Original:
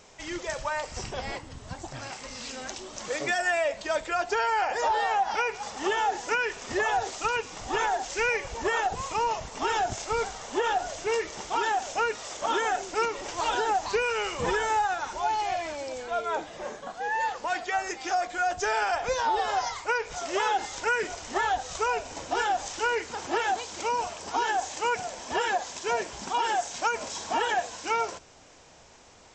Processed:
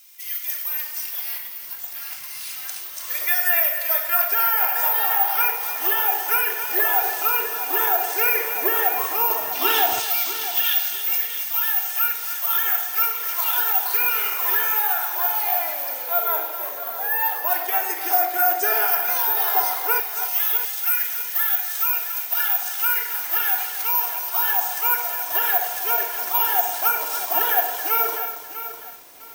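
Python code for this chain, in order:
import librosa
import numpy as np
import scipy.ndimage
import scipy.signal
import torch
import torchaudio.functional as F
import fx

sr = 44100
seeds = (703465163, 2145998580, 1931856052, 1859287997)

y = (np.kron(scipy.signal.resample_poly(x, 1, 3), np.eye(3)[0]) * 3)[:len(x)]
y = fx.peak_eq(y, sr, hz=3500.0, db=11.0, octaves=1.6, at=(9.52, 10.9))
y = fx.room_shoebox(y, sr, seeds[0], volume_m3=2800.0, walls='furnished', distance_m=3.1)
y = fx.filter_lfo_highpass(y, sr, shape='saw_down', hz=0.1, low_hz=260.0, high_hz=2700.0, q=0.76)
y = fx.peak_eq(y, sr, hz=420.0, db=-14.5, octaves=1.2, at=(18.86, 19.55))
y = fx.echo_thinned(y, sr, ms=276, feedback_pct=16, hz=810.0, wet_db=-9.5)
y = fx.echo_crushed(y, sr, ms=650, feedback_pct=35, bits=6, wet_db=-11)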